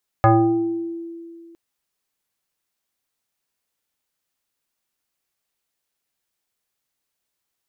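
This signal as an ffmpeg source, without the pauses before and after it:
-f lavfi -i "aevalsrc='0.355*pow(10,-3*t/2.3)*sin(2*PI*335*t+2.2*pow(10,-3*t/1.05)*sin(2*PI*1.34*335*t))':d=1.31:s=44100"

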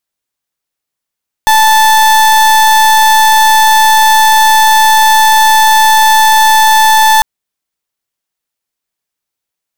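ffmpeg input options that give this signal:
-f lavfi -i "aevalsrc='0.501*(2*lt(mod(877*t,1),0.36)-1)':d=5.75:s=44100"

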